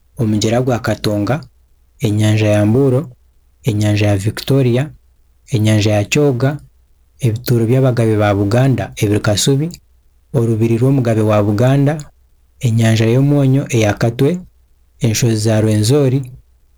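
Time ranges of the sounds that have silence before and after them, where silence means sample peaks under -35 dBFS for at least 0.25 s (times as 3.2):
2–3.12
3.64–4.95
5.49–6.65
7.21–9.76
10.34–12.09
12.61–14.46
15.01–16.37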